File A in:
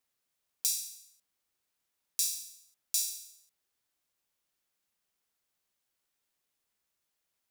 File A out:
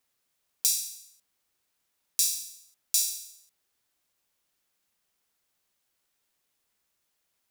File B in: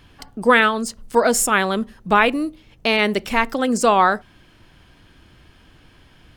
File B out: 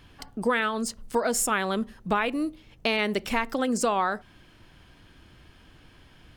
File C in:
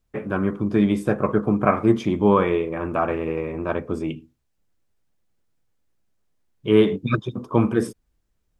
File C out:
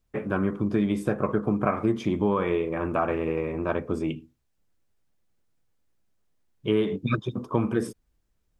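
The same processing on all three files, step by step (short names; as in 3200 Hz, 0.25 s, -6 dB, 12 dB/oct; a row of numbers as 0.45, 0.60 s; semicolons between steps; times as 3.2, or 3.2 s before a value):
compressor 4:1, threshold -19 dBFS; match loudness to -27 LUFS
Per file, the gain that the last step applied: +5.5, -3.0, -1.0 dB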